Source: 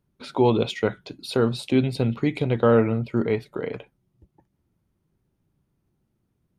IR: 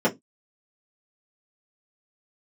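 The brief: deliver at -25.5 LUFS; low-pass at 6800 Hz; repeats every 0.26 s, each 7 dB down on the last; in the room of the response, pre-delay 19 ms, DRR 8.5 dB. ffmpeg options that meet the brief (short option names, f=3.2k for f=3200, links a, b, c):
-filter_complex "[0:a]lowpass=6.8k,aecho=1:1:260|520|780|1040|1300:0.447|0.201|0.0905|0.0407|0.0183,asplit=2[a][b];[1:a]atrim=start_sample=2205,adelay=19[c];[b][c]afir=irnorm=-1:irlink=0,volume=-24.5dB[d];[a][d]amix=inputs=2:normalize=0,volume=-4dB"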